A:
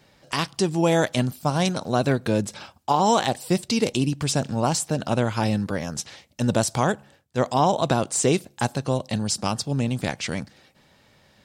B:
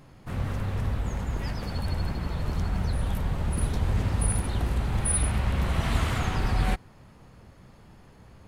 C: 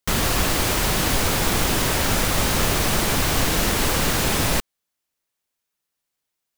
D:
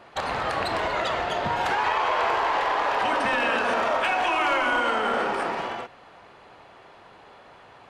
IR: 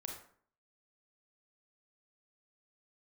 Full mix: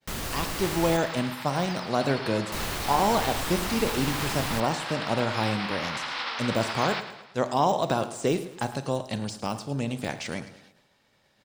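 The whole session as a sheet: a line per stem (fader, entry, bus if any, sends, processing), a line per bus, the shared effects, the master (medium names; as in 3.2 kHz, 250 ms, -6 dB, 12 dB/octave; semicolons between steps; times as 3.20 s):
-5.0 dB, 0.00 s, send -4.5 dB, echo send -12.5 dB, de-esser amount 70%; peaking EQ 80 Hz -6 dB 3 oct
-4.5 dB, 0.25 s, no send, echo send -11 dB, spectral contrast reduction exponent 0.53; Chebyshev band-pass 800–5300 Hz, order 5
-12.0 dB, 0.00 s, muted 0.97–2.52 s, no send, echo send -22 dB, none
-18.0 dB, 1.40 s, no send, no echo send, none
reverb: on, RT60 0.55 s, pre-delay 28 ms
echo: feedback delay 108 ms, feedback 47%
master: expander -55 dBFS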